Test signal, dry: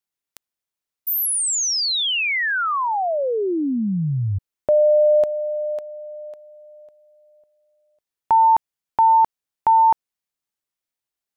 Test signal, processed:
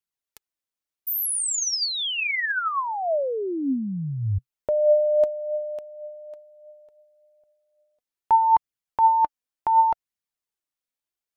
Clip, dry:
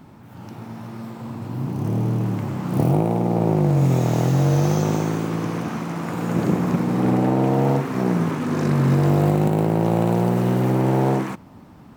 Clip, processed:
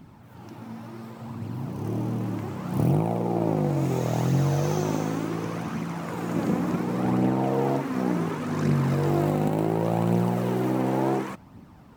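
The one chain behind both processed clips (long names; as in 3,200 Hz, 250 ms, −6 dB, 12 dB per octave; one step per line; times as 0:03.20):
flanger 0.69 Hz, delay 0.3 ms, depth 3.9 ms, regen +50%
dynamic equaliser 130 Hz, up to −4 dB, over −40 dBFS, Q 5.5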